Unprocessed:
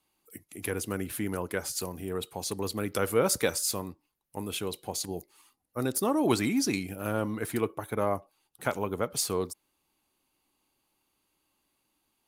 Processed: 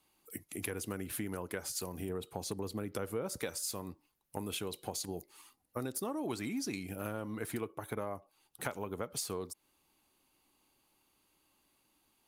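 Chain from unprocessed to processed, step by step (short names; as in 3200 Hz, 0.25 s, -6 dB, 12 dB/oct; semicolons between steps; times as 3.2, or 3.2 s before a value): 2.09–3.4 tilt shelf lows +3.5 dB; compressor 6:1, threshold -38 dBFS, peak gain reduction 18.5 dB; gain +2.5 dB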